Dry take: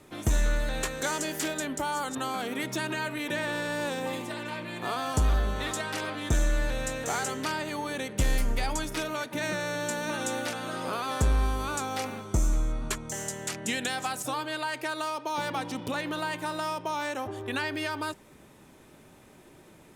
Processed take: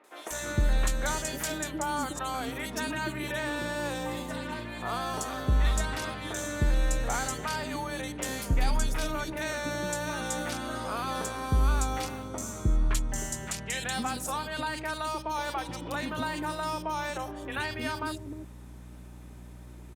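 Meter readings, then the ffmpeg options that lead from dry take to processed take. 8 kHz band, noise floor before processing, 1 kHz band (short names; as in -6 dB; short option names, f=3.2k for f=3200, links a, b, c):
0.0 dB, -54 dBFS, -0.5 dB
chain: -filter_complex "[0:a]aeval=exprs='val(0)+0.00562*(sin(2*PI*60*n/s)+sin(2*PI*2*60*n/s)/2+sin(2*PI*3*60*n/s)/3+sin(2*PI*4*60*n/s)/4+sin(2*PI*5*60*n/s)/5)':c=same,acrossover=split=430|2600[a][b][c];[c]adelay=40[d];[a]adelay=310[e];[e][b][d]amix=inputs=3:normalize=0"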